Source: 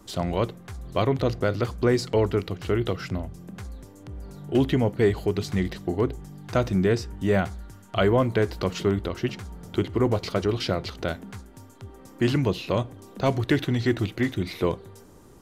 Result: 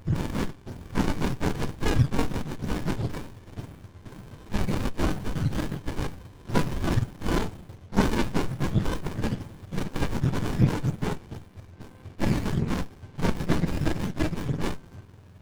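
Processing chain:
frequency axis turned over on the octave scale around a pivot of 780 Hz
windowed peak hold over 65 samples
level +6 dB

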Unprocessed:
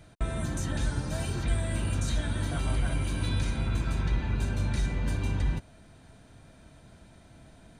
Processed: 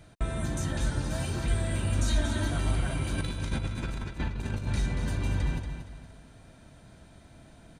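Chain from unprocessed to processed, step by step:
0:01.99–0:02.48: comb filter 3.2 ms, depth 86%
0:03.18–0:04.67: compressor whose output falls as the input rises −31 dBFS, ratio −0.5
repeating echo 233 ms, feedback 35%, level −8 dB

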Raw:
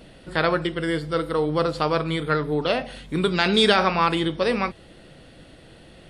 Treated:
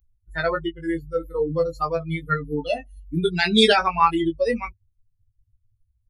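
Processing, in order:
spectral dynamics exaggerated over time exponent 3
double-tracking delay 18 ms −4.5 dB
level +4 dB

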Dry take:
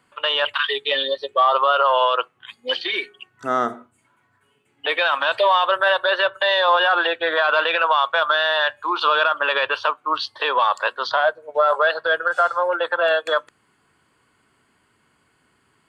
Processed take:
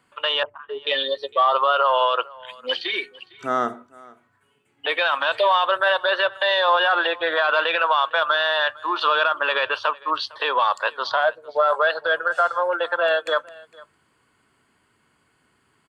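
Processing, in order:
0:00.43–0:00.87: Bessel low-pass filter 620 Hz, order 4
single-tap delay 456 ms −23 dB
level −1.5 dB

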